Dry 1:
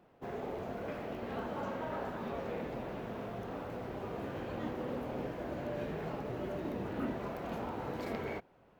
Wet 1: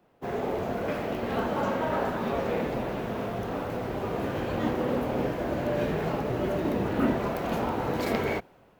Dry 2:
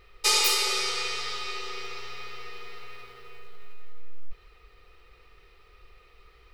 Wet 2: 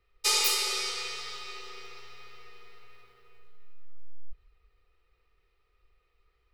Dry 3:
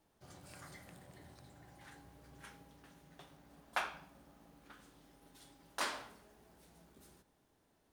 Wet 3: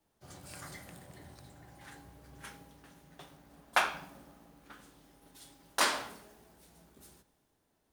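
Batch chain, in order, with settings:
high-shelf EQ 5,800 Hz +4 dB
multiband upward and downward expander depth 40%
normalise the peak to −12 dBFS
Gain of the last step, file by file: +10.5, −8.0, +5.5 decibels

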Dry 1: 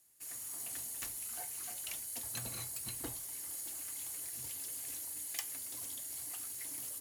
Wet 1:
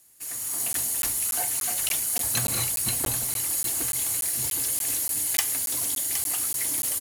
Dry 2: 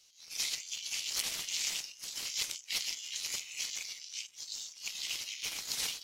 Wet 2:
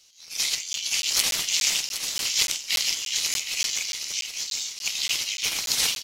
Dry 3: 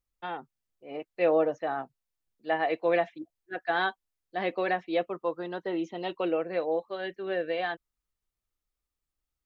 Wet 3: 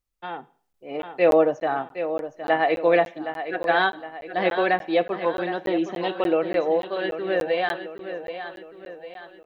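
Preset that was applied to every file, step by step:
repeating echo 765 ms, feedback 47%, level −10 dB
automatic gain control gain up to 5 dB
four-comb reverb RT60 0.47 s, combs from 31 ms, DRR 18 dB
regular buffer underruns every 0.29 s, samples 512, zero, from 0:00.73
loudness normalisation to −24 LKFS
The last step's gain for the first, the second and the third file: +10.5, +6.5, +1.5 decibels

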